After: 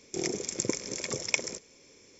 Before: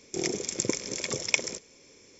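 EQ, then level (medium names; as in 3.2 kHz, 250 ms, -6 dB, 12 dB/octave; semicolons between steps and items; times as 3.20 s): dynamic bell 3.3 kHz, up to -4 dB, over -43 dBFS, Q 1.7; -1.5 dB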